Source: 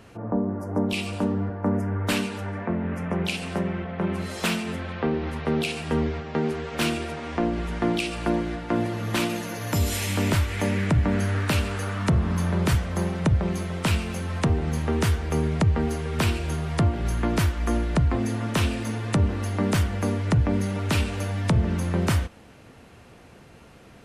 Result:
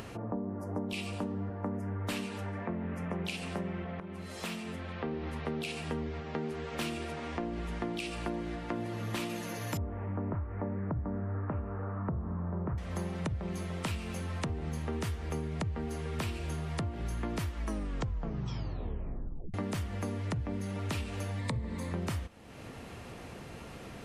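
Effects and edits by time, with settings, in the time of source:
4.00–5.42 s: fade in, from -15.5 dB
9.77–12.78 s: inverse Chebyshev low-pass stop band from 4.4 kHz, stop band 60 dB
17.55 s: tape stop 1.99 s
21.39–21.92 s: rippled EQ curve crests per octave 0.99, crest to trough 9 dB
whole clip: upward compressor, threshold -28 dBFS; band-stop 1.5 kHz, Q 18; compression, threshold -25 dBFS; trim -6.5 dB

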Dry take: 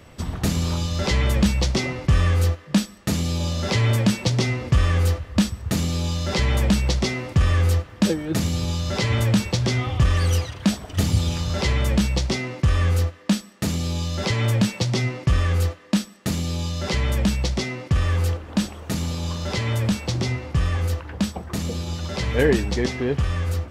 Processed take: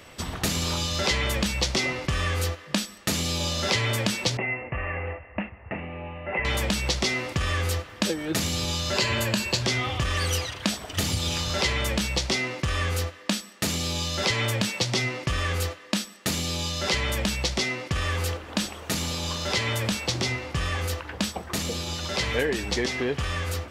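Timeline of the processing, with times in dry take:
4.37–6.45 s: rippled Chebyshev low-pass 2.8 kHz, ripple 9 dB
8.93–9.62 s: rippled EQ curve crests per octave 1.4, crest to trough 7 dB
whole clip: tone controls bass -7 dB, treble -5 dB; compression, threshold -23 dBFS; treble shelf 2.2 kHz +10 dB

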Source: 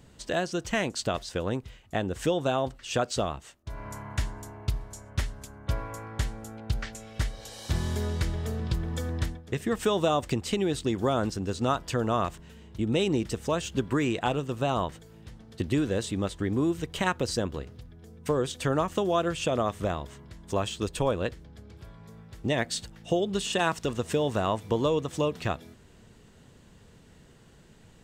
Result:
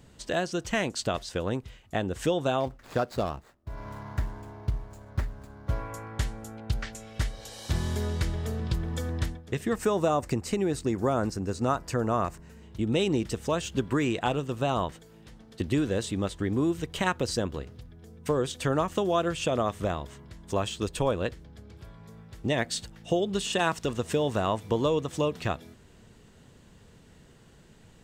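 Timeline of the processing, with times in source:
2.60–5.79 s: median filter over 15 samples
9.75–12.63 s: peaking EQ 3.3 kHz -12 dB 0.5 oct
14.92–15.61 s: peaking EQ 85 Hz -14.5 dB 0.75 oct

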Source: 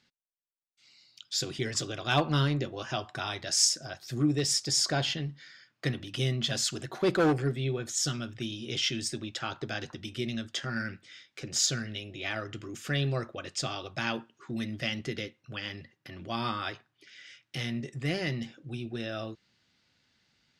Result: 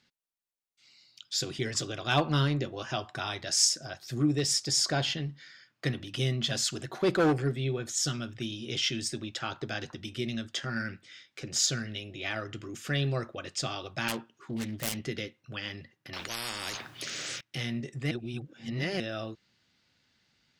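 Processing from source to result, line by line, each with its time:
14.08–14.97 s: self-modulated delay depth 0.64 ms
16.13–17.41 s: spectrum-flattening compressor 10:1
18.11–19.00 s: reverse

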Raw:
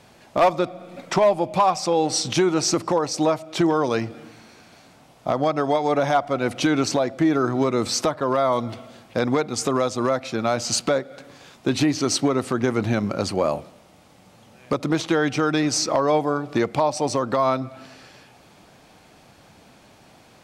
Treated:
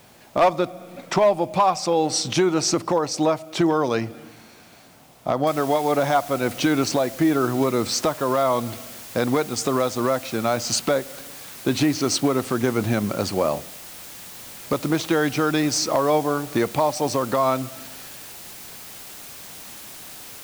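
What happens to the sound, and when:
5.47 s: noise floor step -57 dB -40 dB

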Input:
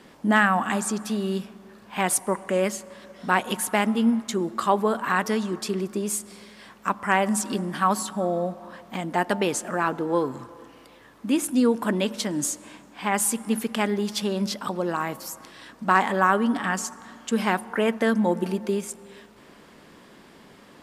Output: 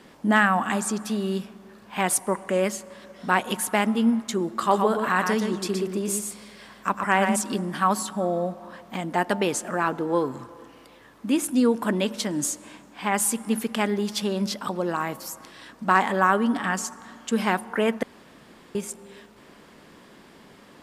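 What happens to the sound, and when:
4.49–7.36 s: delay 120 ms -5.5 dB
18.03–18.75 s: room tone

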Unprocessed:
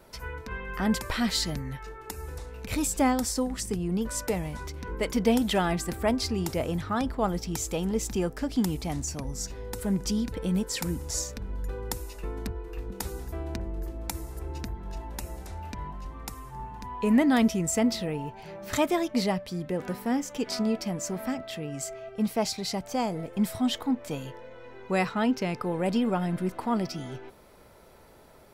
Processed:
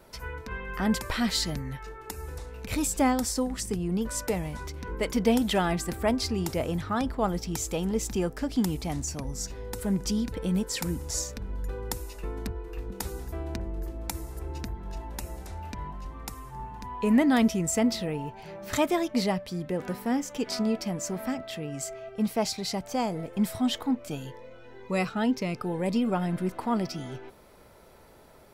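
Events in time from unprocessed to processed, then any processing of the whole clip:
23.96–26.12 s: Shepard-style phaser rising 2 Hz

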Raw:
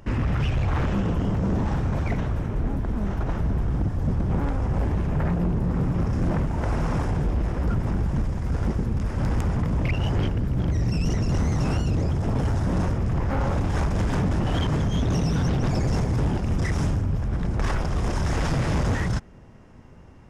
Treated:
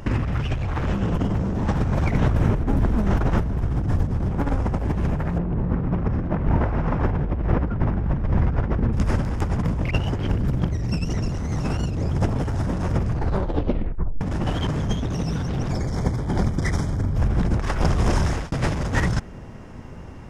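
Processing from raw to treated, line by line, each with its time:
5.38–8.93 s: low-pass 2.4 kHz
13.05 s: tape stop 1.16 s
15.73–17.16 s: Butterworth band-stop 2.7 kHz, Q 4.4
17.67–18.52 s: fade out equal-power
whole clip: compressor with a negative ratio -26 dBFS, ratio -0.5; trim +5.5 dB

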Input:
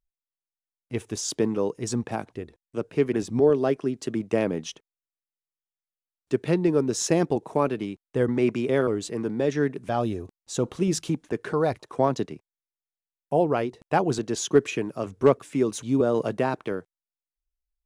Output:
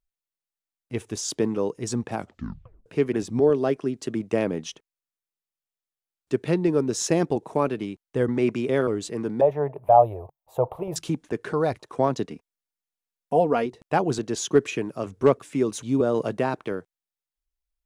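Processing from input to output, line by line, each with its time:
2.17 s: tape stop 0.69 s
9.41–10.96 s: FFT filter 140 Hz 0 dB, 210 Hz -18 dB, 330 Hz -10 dB, 630 Hz +14 dB, 920 Hz +12 dB, 1.6 kHz -14 dB, 2.4 kHz -10 dB, 6 kHz -29 dB, 8.9 kHz -18 dB, 13 kHz +6 dB
12.28–13.66 s: comb 4.2 ms, depth 63%

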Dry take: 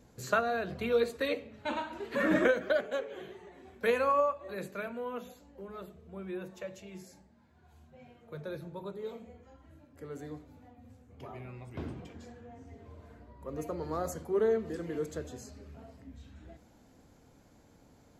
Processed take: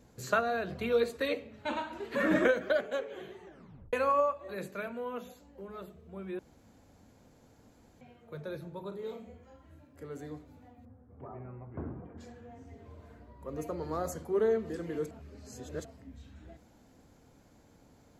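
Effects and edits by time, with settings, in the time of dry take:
3.45 s: tape stop 0.48 s
6.39–8.01 s: room tone
8.88–10.03 s: doubling 36 ms -8 dB
10.85–12.18 s: low-pass 1.5 kHz 24 dB/octave
15.11–15.85 s: reverse

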